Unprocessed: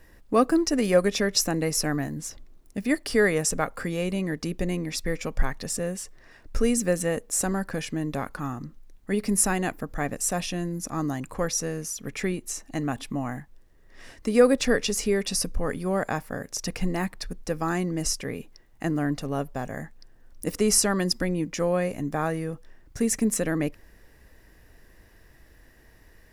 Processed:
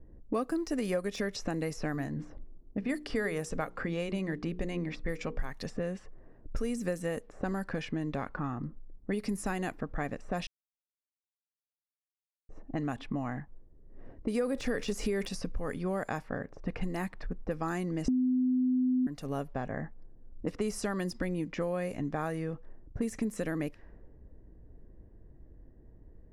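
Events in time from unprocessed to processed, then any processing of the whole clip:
1.92–5.51 notches 60/120/180/240/300/360/420/480 Hz
10.47–12.49 mute
14.43–15.29 fast leveller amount 50%
18.08–19.07 bleep 254 Hz -8.5 dBFS
whole clip: de-esser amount 70%; low-pass opened by the level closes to 340 Hz, open at -22 dBFS; compressor 4:1, threshold -33 dBFS; gain +2 dB

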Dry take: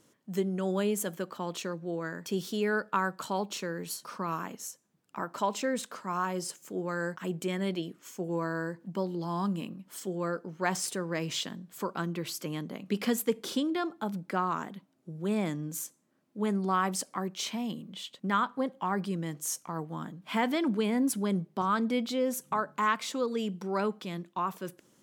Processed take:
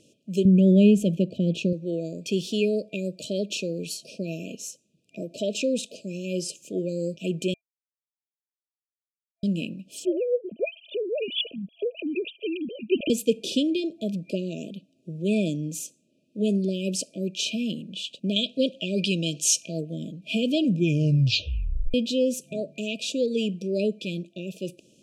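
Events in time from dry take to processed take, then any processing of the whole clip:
0.45–1.73 tone controls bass +15 dB, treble -9 dB
7.54–9.43 mute
10.05–13.1 sine-wave speech
18.36–19.81 bell 3200 Hz +13.5 dB 2.8 oct
20.53 tape stop 1.41 s
whole clip: LPF 8300 Hz 12 dB/oct; FFT band-reject 670–2400 Hz; bell 2100 Hz +14 dB 0.49 oct; gain +6 dB

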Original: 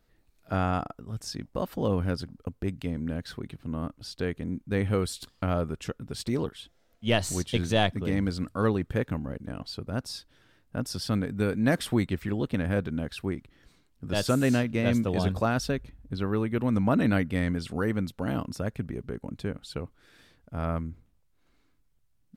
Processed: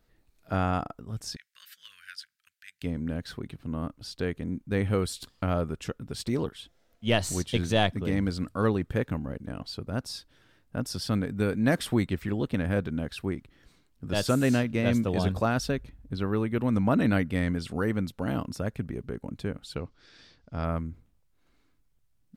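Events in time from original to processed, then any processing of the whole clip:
1.36–2.82 elliptic high-pass 1600 Hz, stop band 50 dB
19.76–20.64 synth low-pass 5100 Hz, resonance Q 2.9

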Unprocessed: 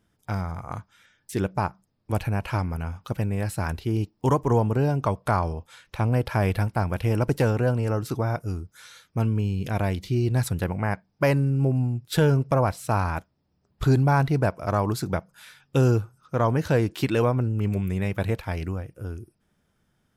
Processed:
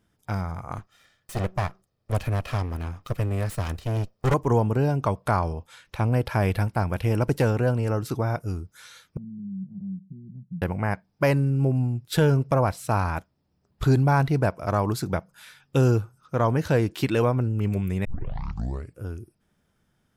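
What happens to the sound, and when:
0.77–4.34 minimum comb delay 1.6 ms
9.17–10.62 Butterworth band-pass 180 Hz, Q 4.1
18.05 tape start 0.94 s

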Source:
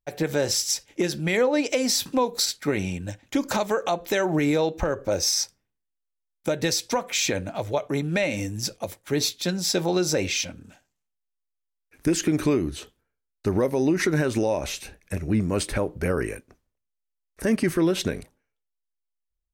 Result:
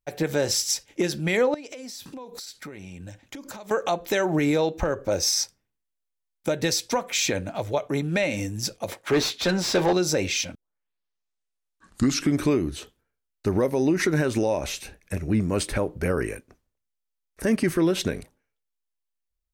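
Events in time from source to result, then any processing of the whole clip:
1.54–3.71 compressor 16:1, threshold -35 dBFS
8.88–9.93 overdrive pedal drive 21 dB, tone 1800 Hz, clips at -11.5 dBFS
10.55 tape start 1.90 s

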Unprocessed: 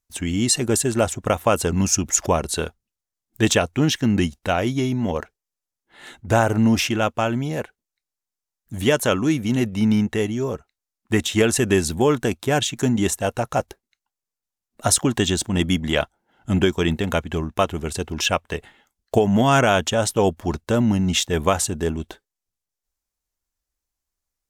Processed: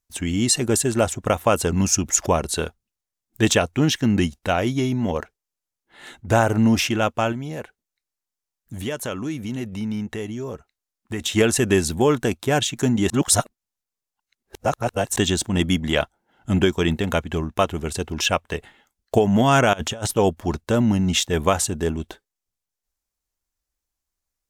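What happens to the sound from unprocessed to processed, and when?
7.32–11.21 compressor 2:1, threshold -31 dBFS
13.1–15.16 reverse
19.73–20.14 negative-ratio compressor -26 dBFS, ratio -0.5

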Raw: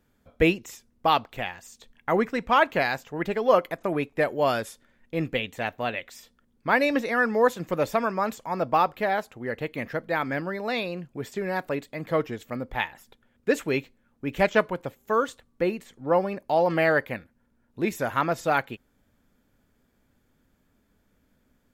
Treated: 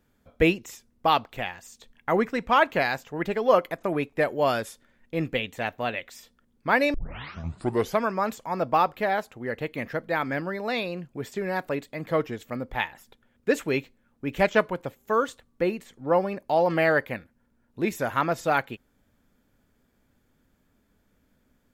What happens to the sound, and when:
6.94 tape start 1.08 s

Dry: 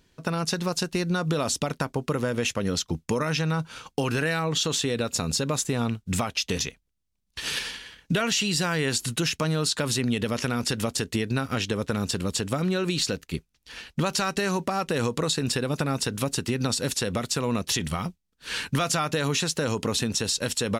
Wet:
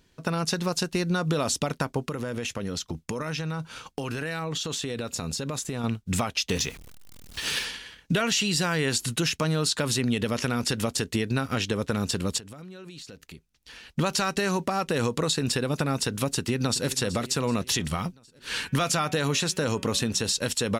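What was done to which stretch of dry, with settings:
2.06–5.84 compressor, threshold -27 dBFS
6.49–7.65 zero-crossing step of -39.5 dBFS
12.38–13.95 compressor 5:1, threshold -42 dBFS
16.32–16.87 echo throw 0.38 s, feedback 55%, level -14.5 dB
18.61–20.32 de-hum 187.2 Hz, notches 19

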